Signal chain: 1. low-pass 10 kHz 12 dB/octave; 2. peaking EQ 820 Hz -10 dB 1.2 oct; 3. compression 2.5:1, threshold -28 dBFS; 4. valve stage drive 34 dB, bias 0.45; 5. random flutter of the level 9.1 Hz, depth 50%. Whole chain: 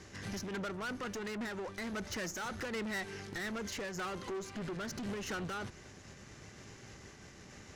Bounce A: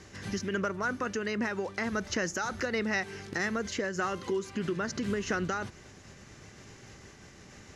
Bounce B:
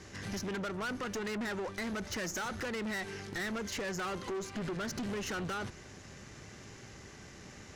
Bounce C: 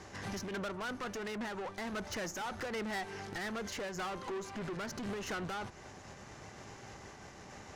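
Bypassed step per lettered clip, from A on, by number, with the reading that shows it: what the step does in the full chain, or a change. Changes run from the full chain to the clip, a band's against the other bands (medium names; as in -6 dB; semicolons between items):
4, crest factor change +6.5 dB; 5, loudness change +2.5 LU; 2, 1 kHz band +3.5 dB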